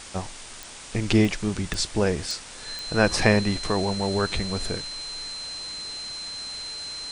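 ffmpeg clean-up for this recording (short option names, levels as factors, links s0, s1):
-af "adeclick=t=4,bandreject=f=4100:w=30,afwtdn=0.011"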